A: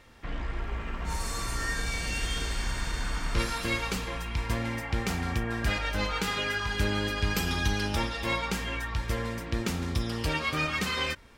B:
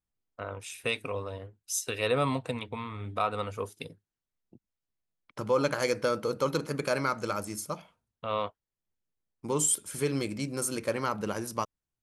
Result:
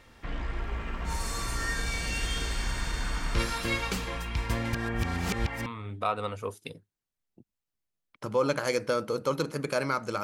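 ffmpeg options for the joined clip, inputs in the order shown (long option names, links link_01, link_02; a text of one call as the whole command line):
ffmpeg -i cue0.wav -i cue1.wav -filter_complex "[0:a]apad=whole_dur=10.23,atrim=end=10.23,asplit=2[link_01][link_02];[link_01]atrim=end=4.732[link_03];[link_02]atrim=start=4.728:end=5.662,asetpts=PTS-STARTPTS,areverse[link_04];[1:a]atrim=start=2.808:end=7.38[link_05];[link_03][link_04]acrossfade=duration=0.004:curve1=hsin:curve2=hsin[link_06];[link_06][link_05]acrossfade=duration=0.004:curve1=hsin:curve2=hsin" out.wav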